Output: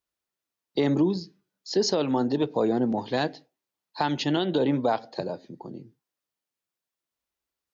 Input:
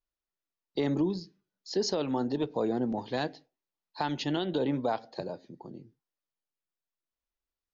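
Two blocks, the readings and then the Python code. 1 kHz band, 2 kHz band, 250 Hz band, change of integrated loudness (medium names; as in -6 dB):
+5.5 dB, +5.5 dB, +5.5 dB, +5.5 dB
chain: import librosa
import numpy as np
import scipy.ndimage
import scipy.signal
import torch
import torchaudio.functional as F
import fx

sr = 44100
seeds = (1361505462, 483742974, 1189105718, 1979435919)

y = scipy.signal.sosfilt(scipy.signal.butter(2, 77.0, 'highpass', fs=sr, output='sos'), x)
y = y * librosa.db_to_amplitude(5.5)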